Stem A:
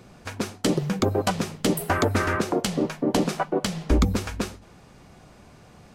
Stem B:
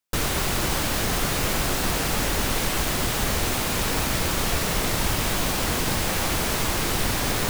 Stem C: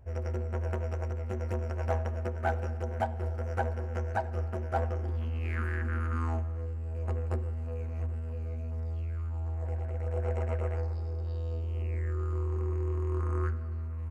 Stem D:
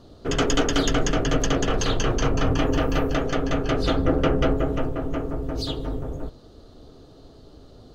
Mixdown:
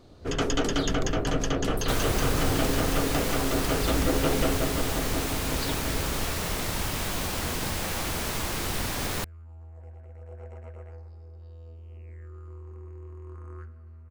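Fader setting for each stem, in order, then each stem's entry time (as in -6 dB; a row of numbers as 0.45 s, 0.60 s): -12.5 dB, -6.0 dB, -11.5 dB, -5.0 dB; 0.00 s, 1.75 s, 0.15 s, 0.00 s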